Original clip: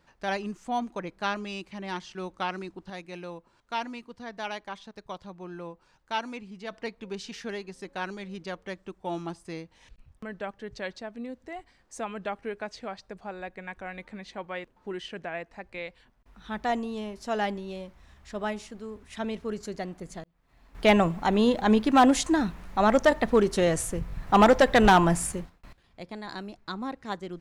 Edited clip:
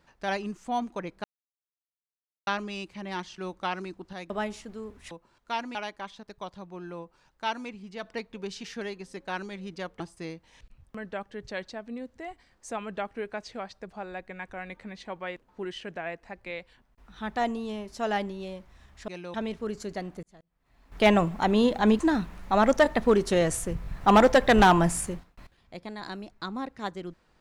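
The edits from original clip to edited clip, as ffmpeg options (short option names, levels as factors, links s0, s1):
-filter_complex "[0:a]asplit=10[s0][s1][s2][s3][s4][s5][s6][s7][s8][s9];[s0]atrim=end=1.24,asetpts=PTS-STARTPTS,afade=t=out:st=1.236:d=0.004:c=hsin,apad=pad_dur=1.23[s10];[s1]atrim=start=1.24:end=3.072,asetpts=PTS-STARTPTS,afade=t=in:d=0.004:c=hsin[s11];[s2]atrim=start=18.358:end=19.172[s12];[s3]atrim=start=3.328:end=3.972[s13];[s4]atrim=start=4.428:end=8.682[s14];[s5]atrim=start=9.278:end=18.362[s15];[s6]atrim=start=3.068:end=3.332[s16];[s7]atrim=start=19.168:end=20.06,asetpts=PTS-STARTPTS,afade=t=out:st=0.888:d=0.004:c=hsin[s17];[s8]atrim=start=20.06:end=21.822,asetpts=PTS-STARTPTS,afade=t=in:d=1.04:c=qsin[s18];[s9]atrim=start=22.248[s19];[s10][s11]concat=n=2:v=0:a=1[s20];[s20][s12]acrossfade=d=0.004:c1=hsin:c2=hsin[s21];[s21][s13]acrossfade=d=0.004:c1=hsin:c2=hsin[s22];[s22][s14]acrossfade=d=0.004:c1=hsin:c2=hsin[s23];[s23][s15]acrossfade=d=0.004:c1=hsin:c2=hsin[s24];[s24][s16]acrossfade=d=0.004:c1=hsin:c2=hsin[s25];[s17][s18]concat=n=2:v=0:a=1[s26];[s25][s26]acrossfade=d=0.004:c1=hsin:c2=hsin[s27];[s27][s19]acrossfade=d=0.004:c1=hsin:c2=hsin"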